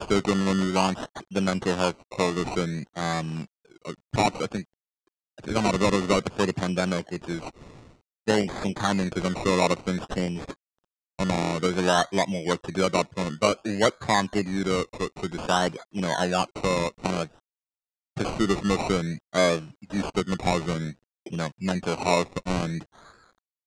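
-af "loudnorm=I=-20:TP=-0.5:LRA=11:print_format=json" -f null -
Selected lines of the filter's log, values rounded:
"input_i" : "-26.6",
"input_tp" : "-8.2",
"input_lra" : "4.0",
"input_thresh" : "-37.2",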